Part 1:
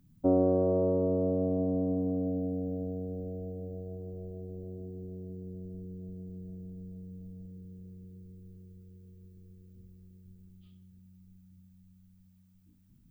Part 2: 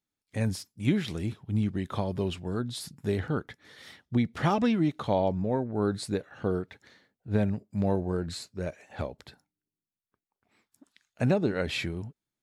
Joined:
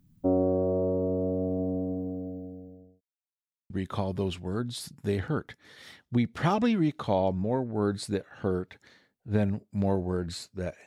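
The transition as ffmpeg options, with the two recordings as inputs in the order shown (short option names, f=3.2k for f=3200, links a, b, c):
-filter_complex "[0:a]apad=whole_dur=10.86,atrim=end=10.86,asplit=2[a][b];[a]atrim=end=3.01,asetpts=PTS-STARTPTS,afade=t=out:st=1.67:d=1.34[c];[b]atrim=start=3.01:end=3.7,asetpts=PTS-STARTPTS,volume=0[d];[1:a]atrim=start=1.7:end=8.86,asetpts=PTS-STARTPTS,afade=t=in:d=0.004:c=hsin[e];[c][d][e]concat=n=3:v=0:a=1"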